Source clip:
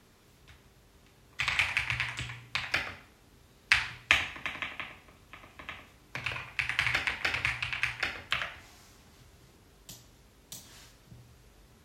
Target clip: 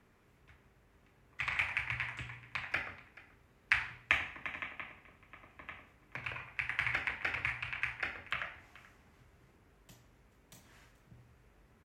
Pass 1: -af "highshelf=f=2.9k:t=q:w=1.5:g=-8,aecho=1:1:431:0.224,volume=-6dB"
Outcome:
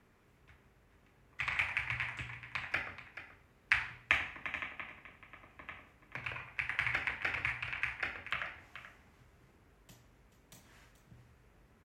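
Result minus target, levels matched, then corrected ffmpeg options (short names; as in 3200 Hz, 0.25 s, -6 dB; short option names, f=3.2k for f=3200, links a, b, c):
echo-to-direct +7.5 dB
-af "highshelf=f=2.9k:t=q:w=1.5:g=-8,aecho=1:1:431:0.0944,volume=-6dB"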